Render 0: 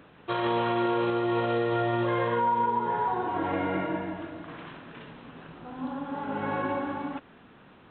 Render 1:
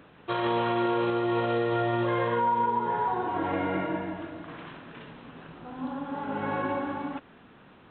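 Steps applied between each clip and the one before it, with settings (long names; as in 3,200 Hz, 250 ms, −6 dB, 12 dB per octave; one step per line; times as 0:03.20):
no processing that can be heard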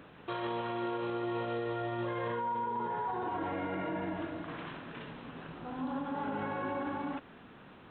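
brickwall limiter −28 dBFS, peak gain reduction 11 dB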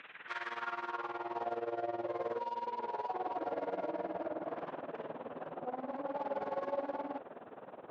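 in parallel at −12 dB: sine wavefolder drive 13 dB, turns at −27.5 dBFS
on the sum: band-pass filter sweep 2,300 Hz → 600 Hz, 0:00.00–0:01.73
amplitude tremolo 19 Hz, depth 81%
level +7 dB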